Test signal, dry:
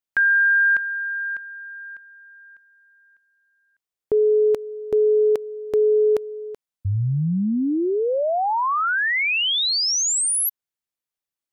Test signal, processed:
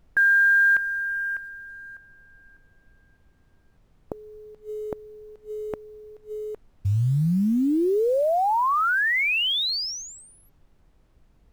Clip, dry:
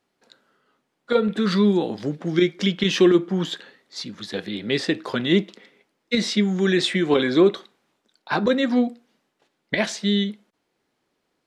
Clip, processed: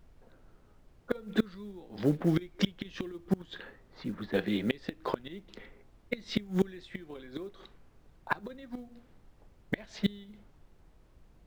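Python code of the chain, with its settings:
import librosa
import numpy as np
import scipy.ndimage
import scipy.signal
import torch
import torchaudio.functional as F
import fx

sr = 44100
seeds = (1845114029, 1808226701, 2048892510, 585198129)

y = fx.lowpass(x, sr, hz=3600.0, slope=6)
y = fx.env_lowpass(y, sr, base_hz=1000.0, full_db=-18.5)
y = fx.quant_float(y, sr, bits=4)
y = fx.gate_flip(y, sr, shuts_db=-14.0, range_db=-27)
y = fx.dmg_noise_colour(y, sr, seeds[0], colour='brown', level_db=-57.0)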